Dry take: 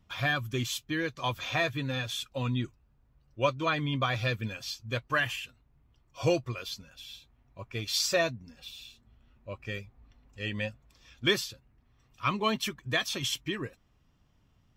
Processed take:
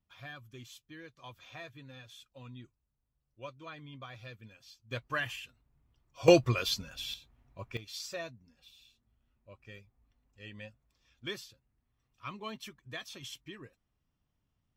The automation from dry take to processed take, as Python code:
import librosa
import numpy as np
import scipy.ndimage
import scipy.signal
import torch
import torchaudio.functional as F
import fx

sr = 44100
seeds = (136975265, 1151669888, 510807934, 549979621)

y = fx.gain(x, sr, db=fx.steps((0.0, -18.0), (4.91, -6.0), (6.28, 6.5), (7.14, -1.0), (7.77, -13.5)))